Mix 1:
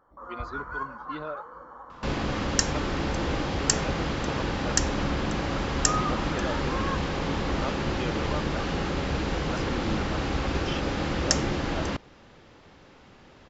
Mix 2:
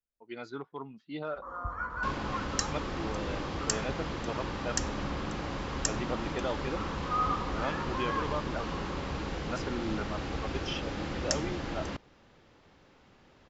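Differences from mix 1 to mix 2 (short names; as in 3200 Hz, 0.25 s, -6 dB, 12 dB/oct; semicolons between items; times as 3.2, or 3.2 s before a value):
first sound: entry +1.25 s; second sound -7.5 dB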